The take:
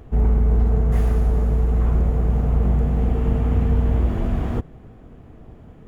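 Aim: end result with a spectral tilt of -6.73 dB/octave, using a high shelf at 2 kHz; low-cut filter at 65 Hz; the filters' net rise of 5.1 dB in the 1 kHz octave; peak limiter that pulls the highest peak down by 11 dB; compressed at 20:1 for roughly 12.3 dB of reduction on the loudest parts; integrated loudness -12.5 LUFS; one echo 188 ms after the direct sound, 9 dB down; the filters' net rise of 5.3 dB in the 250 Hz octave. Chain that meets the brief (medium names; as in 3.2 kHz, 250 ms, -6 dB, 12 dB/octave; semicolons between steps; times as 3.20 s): high-pass 65 Hz; peaking EQ 250 Hz +6.5 dB; peaking EQ 1 kHz +8.5 dB; treble shelf 2 kHz -9 dB; compression 20:1, threshold -27 dBFS; peak limiter -29.5 dBFS; delay 188 ms -9 dB; trim +25 dB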